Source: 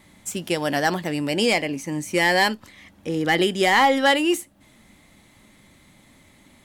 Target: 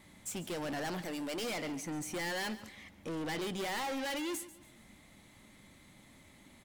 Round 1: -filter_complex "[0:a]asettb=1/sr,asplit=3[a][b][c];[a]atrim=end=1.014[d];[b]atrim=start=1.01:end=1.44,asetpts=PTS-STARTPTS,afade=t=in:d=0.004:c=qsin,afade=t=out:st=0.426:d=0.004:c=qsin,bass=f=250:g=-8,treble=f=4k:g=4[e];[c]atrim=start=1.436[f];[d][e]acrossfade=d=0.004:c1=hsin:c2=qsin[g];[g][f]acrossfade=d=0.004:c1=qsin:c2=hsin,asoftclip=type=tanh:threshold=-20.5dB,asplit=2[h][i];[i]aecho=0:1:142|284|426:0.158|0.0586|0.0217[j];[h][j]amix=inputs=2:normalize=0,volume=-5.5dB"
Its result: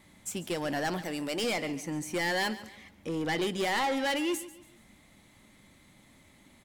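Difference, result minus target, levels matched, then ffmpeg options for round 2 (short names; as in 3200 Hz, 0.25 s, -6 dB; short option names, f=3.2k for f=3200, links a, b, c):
soft clip: distortion -5 dB
-filter_complex "[0:a]asettb=1/sr,asplit=3[a][b][c];[a]atrim=end=1.014[d];[b]atrim=start=1.01:end=1.44,asetpts=PTS-STARTPTS,afade=t=in:d=0.004:c=qsin,afade=t=out:st=0.426:d=0.004:c=qsin,bass=f=250:g=-8,treble=f=4k:g=4[e];[c]atrim=start=1.436[f];[d][e]acrossfade=d=0.004:c1=hsin:c2=qsin[g];[g][f]acrossfade=d=0.004:c1=qsin:c2=hsin,asoftclip=type=tanh:threshold=-30dB,asplit=2[h][i];[i]aecho=0:1:142|284|426:0.158|0.0586|0.0217[j];[h][j]amix=inputs=2:normalize=0,volume=-5.5dB"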